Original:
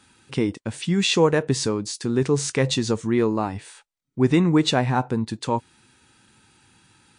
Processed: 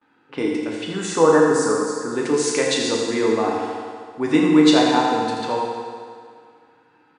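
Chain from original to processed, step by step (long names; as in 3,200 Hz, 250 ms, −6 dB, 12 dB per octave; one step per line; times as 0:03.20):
low-pass that shuts in the quiet parts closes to 1,400 Hz, open at −19.5 dBFS
high-pass filter 310 Hz 12 dB per octave
noise gate with hold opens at −56 dBFS
0:00.89–0:02.12: drawn EQ curve 570 Hz 0 dB, 1,400 Hz +8 dB, 2,800 Hz −22 dB, 7,800 Hz 0 dB
single-tap delay 83 ms −8 dB
feedback delay network reverb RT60 2.1 s, low-frequency decay 0.8×, high-frequency decay 0.85×, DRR −2 dB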